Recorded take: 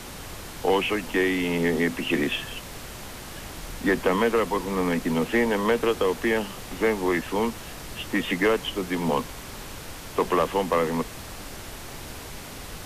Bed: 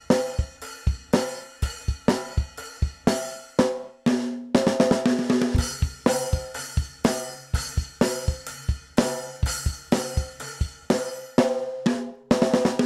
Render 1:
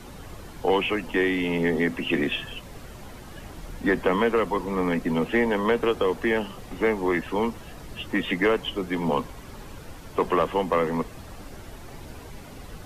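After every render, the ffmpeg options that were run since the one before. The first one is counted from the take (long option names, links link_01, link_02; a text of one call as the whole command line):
ffmpeg -i in.wav -af "afftdn=noise_reduction=10:noise_floor=-39" out.wav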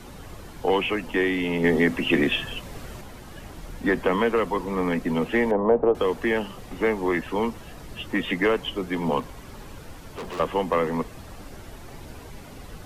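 ffmpeg -i in.wav -filter_complex "[0:a]asettb=1/sr,asplit=3[link_01][link_02][link_03];[link_01]atrim=end=5.514[link_04];[link_02]atrim=start=5.51:end=5.95,asetpts=PTS-STARTPTS,afade=type=in:duration=0.004:curve=qsin,afade=type=out:start_time=0.436:duration=0.004:curve=qsin,lowpass=frequency=710:width_type=q:width=2.2[link_05];[link_03]atrim=start=5.946[link_06];[link_04][link_05]acrossfade=duration=0.004:curve1=hsin:curve2=qsin[link_07];[link_07][link_06]acrossfade=duration=0.004:curve1=qsin:curve2=hsin,asettb=1/sr,asplit=3[link_08][link_09][link_10];[link_08]atrim=end=9.204[link_11];[link_09]atrim=start=9.2:end=10.4,asetpts=PTS-STARTPTS,afade=type=in:duration=0.004:curve=qsin,afade=type=out:start_time=1.196:duration=0.004:curve=qsin,volume=32dB,asoftclip=hard,volume=-32dB[link_12];[link_10]atrim=start=10.396[link_13];[link_11][link_12]acrossfade=duration=0.004:curve1=hsin:curve2=qsin[link_14];[link_14][link_13]acrossfade=duration=0.004:curve1=qsin:curve2=hsin,asplit=3[link_15][link_16][link_17];[link_15]atrim=end=1.642[link_18];[link_16]atrim=start=1.638:end=3.012,asetpts=PTS-STARTPTS,volume=3.5dB[link_19];[link_17]atrim=start=3.008[link_20];[link_18][link_19]acrossfade=duration=0.004:curve1=hsin:curve2=hsin[link_21];[link_21][link_20]acrossfade=duration=0.004:curve1=hsin:curve2=hsin" out.wav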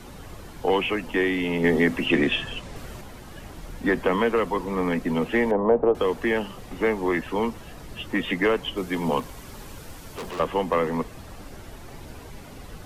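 ffmpeg -i in.wav -filter_complex "[0:a]asettb=1/sr,asplit=3[link_01][link_02][link_03];[link_01]atrim=end=2.064[link_04];[link_02]atrim=start=2.06:end=2.76,asetpts=PTS-STARTPTS,afade=type=in:duration=0.004:curve=qsin,afade=type=out:start_time=0.696:duration=0.004:curve=qsin,lowpass=9100[link_05];[link_03]atrim=start=2.756[link_06];[link_04][link_05]acrossfade=duration=0.004:curve1=hsin:curve2=qsin[link_07];[link_07][link_06]acrossfade=duration=0.004:curve1=qsin:curve2=hsin,asettb=1/sr,asplit=3[link_08][link_09][link_10];[link_08]atrim=end=8.774[link_11];[link_09]atrim=start=8.77:end=10.31,asetpts=PTS-STARTPTS,afade=type=in:duration=0.004:curve=qsin,afade=type=out:start_time=1.536:duration=0.004:curve=qsin,highshelf=frequency=4700:gain=7[link_12];[link_10]atrim=start=10.306[link_13];[link_11][link_12]acrossfade=duration=0.004:curve1=hsin:curve2=qsin[link_14];[link_14][link_13]acrossfade=duration=0.004:curve1=qsin:curve2=hsin" out.wav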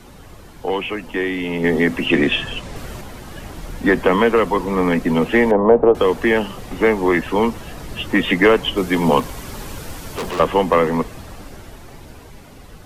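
ffmpeg -i in.wav -af "dynaudnorm=framelen=300:gausssize=13:maxgain=11.5dB" out.wav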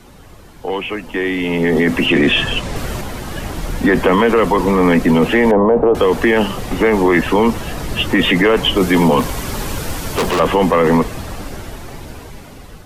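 ffmpeg -i in.wav -af "alimiter=limit=-13.5dB:level=0:latency=1:release=12,dynaudnorm=framelen=610:gausssize=5:maxgain=9dB" out.wav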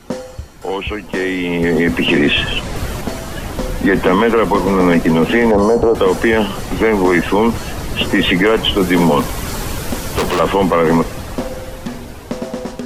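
ffmpeg -i in.wav -i bed.wav -filter_complex "[1:a]volume=-4dB[link_01];[0:a][link_01]amix=inputs=2:normalize=0" out.wav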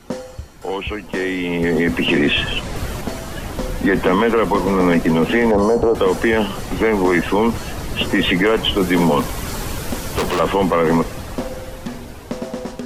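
ffmpeg -i in.wav -af "volume=-3dB" out.wav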